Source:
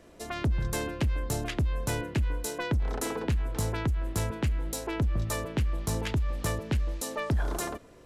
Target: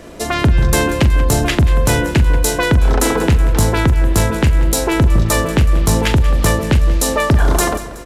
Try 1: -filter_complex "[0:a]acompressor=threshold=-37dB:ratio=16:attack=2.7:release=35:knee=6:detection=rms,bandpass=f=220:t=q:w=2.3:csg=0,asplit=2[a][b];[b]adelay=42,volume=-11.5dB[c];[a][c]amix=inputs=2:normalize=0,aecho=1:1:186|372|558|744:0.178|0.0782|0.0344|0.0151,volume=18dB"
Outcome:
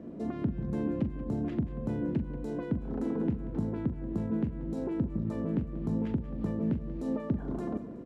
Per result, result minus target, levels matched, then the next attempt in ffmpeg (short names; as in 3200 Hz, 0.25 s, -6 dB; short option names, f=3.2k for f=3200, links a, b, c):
compressor: peak gain reduction +10 dB; 250 Hz band +7.5 dB
-filter_complex "[0:a]acompressor=threshold=-25.5dB:ratio=16:attack=2.7:release=35:knee=6:detection=rms,bandpass=f=220:t=q:w=2.3:csg=0,asplit=2[a][b];[b]adelay=42,volume=-11.5dB[c];[a][c]amix=inputs=2:normalize=0,aecho=1:1:186|372|558|744:0.178|0.0782|0.0344|0.0151,volume=18dB"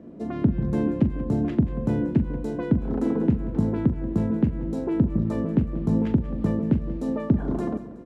250 Hz band +7.5 dB
-filter_complex "[0:a]acompressor=threshold=-25.5dB:ratio=16:attack=2.7:release=35:knee=6:detection=rms,asplit=2[a][b];[b]adelay=42,volume=-11.5dB[c];[a][c]amix=inputs=2:normalize=0,aecho=1:1:186|372|558|744:0.178|0.0782|0.0344|0.0151,volume=18dB"